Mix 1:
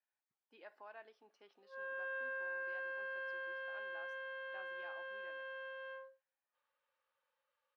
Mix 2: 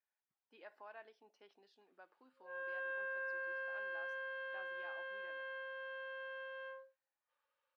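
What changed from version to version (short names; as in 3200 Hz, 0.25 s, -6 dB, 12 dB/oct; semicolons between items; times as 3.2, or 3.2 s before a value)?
background: entry +0.75 s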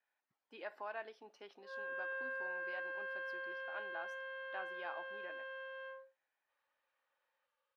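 speech +9.5 dB; background: entry -0.80 s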